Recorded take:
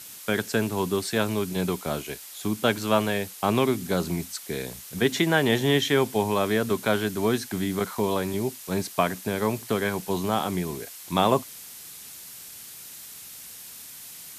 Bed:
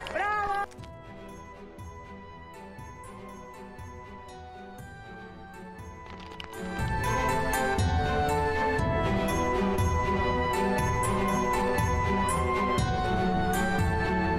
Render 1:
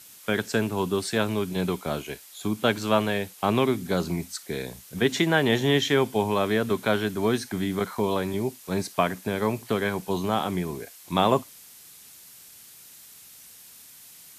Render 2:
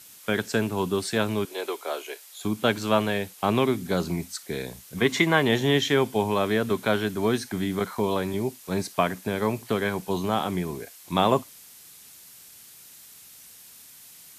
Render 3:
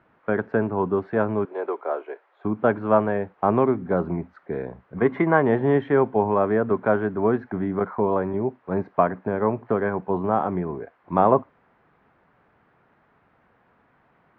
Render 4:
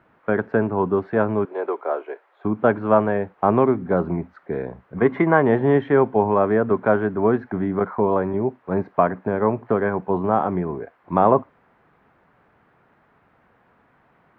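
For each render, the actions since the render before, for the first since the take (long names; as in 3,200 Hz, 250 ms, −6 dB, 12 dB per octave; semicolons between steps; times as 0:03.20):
noise reduction from a noise print 6 dB
0:01.45–0:02.45: Butterworth high-pass 360 Hz; 0:04.97–0:05.43: hollow resonant body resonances 1,100/2,100 Hz, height 11 dB, ringing for 25 ms
low-pass filter 1,600 Hz 24 dB per octave; parametric band 660 Hz +5 dB 2.2 octaves
level +2.5 dB; brickwall limiter −3 dBFS, peak gain reduction 2 dB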